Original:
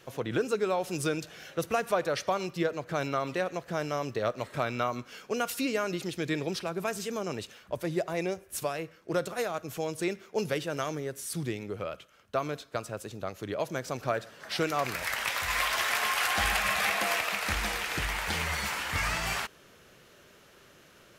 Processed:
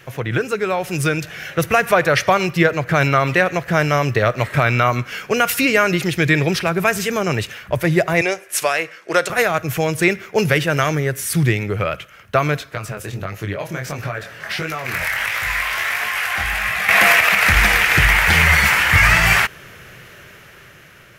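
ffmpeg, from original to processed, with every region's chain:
-filter_complex "[0:a]asettb=1/sr,asplit=3[a][b][c];[a]atrim=end=8.214[d];[b]atrim=start=8.21:end=9.3,asetpts=PTS-STARTPTS,afade=t=in:d=0.004:c=qsin,afade=t=out:st=1.086:d=0.004:c=qsin,highpass=410,lowpass=7.6k,highshelf=f=5.8k:g=10[e];[c]atrim=start=9.296[f];[d][e]acrossfade=d=0.004:c1=hsin:c2=qsin[g];[g][f]acrossfade=d=0.004:c1=qsin:c2=hsin,asettb=1/sr,asplit=3[h][i][j];[h]atrim=end=12.744[k];[i]atrim=start=12.74:end=16.89,asetpts=PTS-STARTPTS,afade=t=in:d=0.004:c=qsin,afade=t=out:st=4.146:d=0.004:c=qsin,acompressor=threshold=-33dB:ratio=6:attack=3.2:release=140:knee=1:detection=peak,flanger=delay=18:depth=7.2:speed=1.5[l];[j]atrim=start=16.886[m];[k][l]acrossfade=d=0.004:c1=hsin:c2=qsin[n];[n][m]acrossfade=d=0.004:c1=qsin:c2=hsin,equalizer=f=125:t=o:w=1:g=5,equalizer=f=250:t=o:w=1:g=-7,equalizer=f=500:t=o:w=1:g=-4,equalizer=f=1k:t=o:w=1:g=-4,equalizer=f=2k:t=o:w=1:g=6,equalizer=f=4k:t=o:w=1:g=-6,equalizer=f=8k:t=o:w=1:g=-5,dynaudnorm=f=560:g=5:m=6dB,alimiter=level_in=13dB:limit=-1dB:release=50:level=0:latency=1,volume=-1dB"

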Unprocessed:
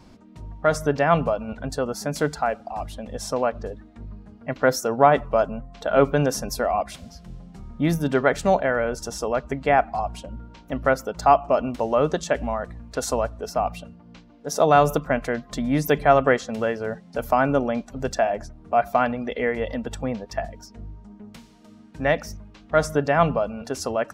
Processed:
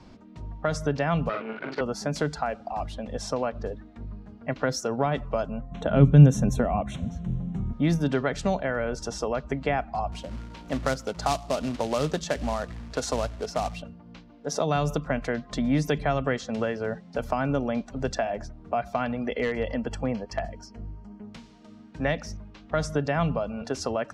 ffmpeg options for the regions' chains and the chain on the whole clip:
-filter_complex "[0:a]asettb=1/sr,asplit=3[a][b][c];[a]atrim=end=1.294[d];[b]atrim=start=1.29:end=1.81,asetpts=PTS-STARTPTS,afade=t=in:d=0.004:c=qsin,afade=t=out:st=0.516:d=0.004:c=qsin,aeval=exprs='max(val(0),0)':c=same,highpass=250,equalizer=f=380:t=q:w=4:g=9,equalizer=f=720:t=q:w=4:g=-4,equalizer=f=1.4k:t=q:w=4:g=9,equalizer=f=2.3k:t=q:w=4:g=9,lowpass=f=4.5k:w=0.5412,lowpass=f=4.5k:w=1.3066,asplit=2[e][f];[f]adelay=45,volume=-4dB[g];[e][g]amix=inputs=2:normalize=0,atrim=end_sample=22932[h];[c]atrim=start=1.806[i];[d][h]acrossfade=d=0.004:c1=hsin:c2=qsin[j];[j][i]acrossfade=d=0.004:c1=qsin:c2=hsin,asettb=1/sr,asplit=3[k][l][m];[k]atrim=end=5.714[n];[l]atrim=start=5.71:end=7.73,asetpts=PTS-STARTPTS,afade=t=in:d=0.004:c=qsin,afade=t=out:st=2.016:d=0.004:c=qsin,asuperstop=centerf=4800:order=4:qfactor=2.3,equalizer=f=130:w=0.45:g=14[o];[m]atrim=start=7.726[p];[n][o]acrossfade=d=0.004:c1=hsin:c2=qsin[q];[q][p]acrossfade=d=0.004:c1=qsin:c2=hsin,asettb=1/sr,asplit=3[r][s][t];[r]atrim=end=10.124[u];[s]atrim=start=10.12:end=13.82,asetpts=PTS-STARTPTS,afade=t=in:d=0.004:c=qsin,afade=t=out:st=3.696:d=0.004:c=qsin,highpass=f=43:w=0.5412,highpass=f=43:w=1.3066,acompressor=mode=upward:threshold=-35dB:ratio=2.5:attack=3.2:release=140:knee=2.83:detection=peak,acrusher=bits=3:mode=log:mix=0:aa=0.000001[v];[t]atrim=start=13.816[w];[u][v]acrossfade=d=0.004:c1=hsin:c2=qsin[x];[x][w]acrossfade=d=0.004:c1=qsin:c2=hsin,asettb=1/sr,asplit=3[y][z][aa];[y]atrim=end=19.254[ab];[z]atrim=start=19.25:end=21.23,asetpts=PTS-STARTPTS,afade=t=in:d=0.004:c=qsin,afade=t=out:st=1.976:d=0.004:c=qsin,asuperstop=centerf=3700:order=8:qfactor=5.9,asoftclip=type=hard:threshold=-16.5dB[ac];[aa]atrim=start=21.226[ad];[ab][ac]acrossfade=d=0.004:c1=hsin:c2=qsin[ae];[ae][ad]acrossfade=d=0.004:c1=qsin:c2=hsin,lowpass=6.1k,acrossover=split=230|3000[af][ag][ah];[ag]acompressor=threshold=-25dB:ratio=5[ai];[af][ai][ah]amix=inputs=3:normalize=0"

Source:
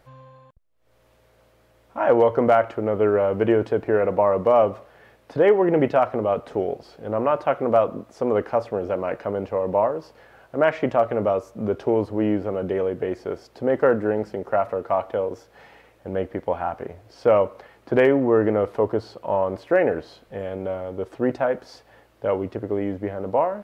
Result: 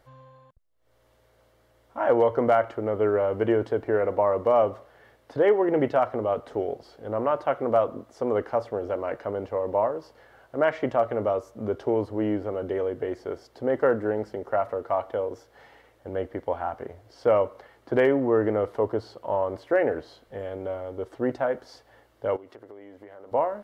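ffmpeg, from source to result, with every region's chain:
-filter_complex "[0:a]asettb=1/sr,asplit=3[a][b][c];[a]atrim=end=22.364[d];[b]atrim=start=22.36:end=23.32,asetpts=PTS-STARTPTS,afade=t=in:d=0.004:c=qsin,afade=t=out:st=0.956:d=0.004:c=qsin,highpass=f=580:p=1,acompressor=threshold=-38dB:ratio=5:attack=3.2:release=140:knee=1:detection=peak[e];[c]atrim=start=23.316[f];[d][e]acrossfade=d=0.004:c1=hsin:c2=qsin[g];[g][f]acrossfade=d=0.004:c1=qsin:c2=hsin,equalizer=f=180:w=6.4:g=-13.5,bandreject=f=2.5k:w=9.7,volume=-3.5dB"

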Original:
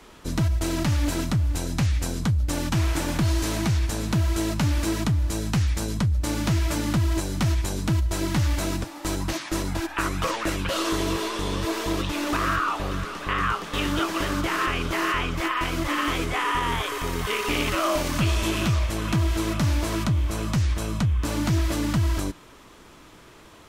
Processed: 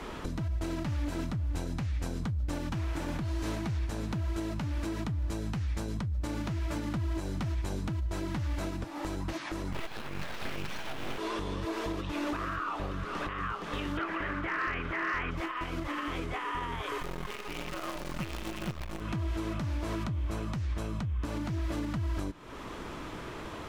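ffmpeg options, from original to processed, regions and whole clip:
-filter_complex "[0:a]asettb=1/sr,asplit=3[a][b][c];[a]atrim=end=9.724[d];[b]atrim=start=9.72:end=11.18,asetpts=PTS-STARTPTS,afade=t=in:d=0.004:c=qsin,afade=t=out:st=1.456:d=0.004:c=qsin,highshelf=f=4.1k:t=q:w=3:g=-12.5,aeval=exprs='abs(val(0))':c=same,acrusher=bits=2:mode=log:mix=0:aa=0.000001[e];[c]atrim=start=11.176[f];[d][e]acrossfade=d=0.004:c1=hsin:c2=qsin[g];[g][f]acrossfade=d=0.004:c1=qsin:c2=hsin,asettb=1/sr,asplit=3[h][i][j];[h]atrim=end=13.974[k];[i]atrim=start=13.97:end=15.31,asetpts=PTS-STARTPTS,afade=t=in:d=0.004:c=qsin,afade=t=out:st=1.336:d=0.004:c=qsin,acrossover=split=2800[l][m];[m]acompressor=threshold=-47dB:ratio=4:attack=1:release=60[n];[l][n]amix=inputs=2:normalize=0,equalizer=f=1.9k:w=1.3:g=11,volume=13.5dB,asoftclip=hard,volume=-13.5dB[o];[j]atrim=start=15.306[p];[k][o]acrossfade=d=0.004:c1=hsin:c2=qsin[q];[q][p]acrossfade=d=0.004:c1=qsin:c2=hsin,asettb=1/sr,asplit=3[r][s][t];[r]atrim=end=17.004[u];[s]atrim=start=17:end=19.01,asetpts=PTS-STARTPTS,afade=t=in:d=0.004:c=qsin,afade=t=out:st=2.006:d=0.004:c=qsin,aecho=1:1:5.6:0.56,atrim=end_sample=88641,acrusher=bits=4:dc=4:mix=0:aa=0.000001[v];[t]atrim=start=19.006[w];[u][v]acrossfade=d=0.004:c1=hsin:c2=qsin[x];[x][w]acrossfade=d=0.004:c1=qsin:c2=hsin,highshelf=f=4.1k:g=-12,acompressor=threshold=-39dB:ratio=3,alimiter=level_in=9.5dB:limit=-24dB:level=0:latency=1:release=446,volume=-9.5dB,volume=9dB"

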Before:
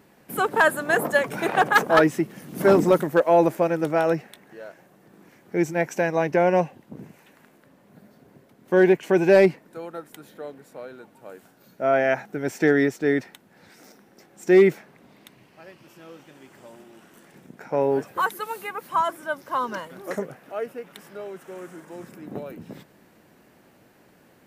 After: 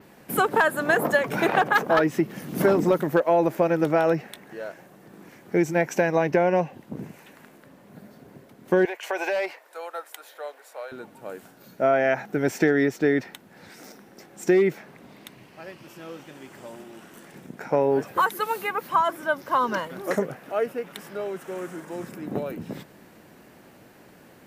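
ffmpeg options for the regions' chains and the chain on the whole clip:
-filter_complex "[0:a]asettb=1/sr,asplit=3[a][b][c];[a]atrim=end=8.854[d];[b]atrim=start=8.85:end=10.92,asetpts=PTS-STARTPTS,afade=t=in:d=0.004:c=qsin,afade=t=out:st=2.066:d=0.004:c=qsin,highpass=f=580:w=0.5412,highpass=f=580:w=1.3066,asoftclip=type=hard:threshold=-14dB,acompressor=threshold=-27dB:ratio=10:attack=3.2:release=140:knee=1:detection=peak[e];[c]atrim=start=10.916[f];[d][e]acrossfade=d=0.004:c1=hsin:c2=qsin[g];[g][f]acrossfade=d=0.004:c1=qsin:c2=hsin,acompressor=threshold=-22dB:ratio=5,adynamicequalizer=threshold=0.00126:dfrequency=9000:dqfactor=1.2:tfrequency=9000:tqfactor=1.2:attack=5:release=100:ratio=0.375:range=3.5:mode=cutabove:tftype=bell,volume=5dB"

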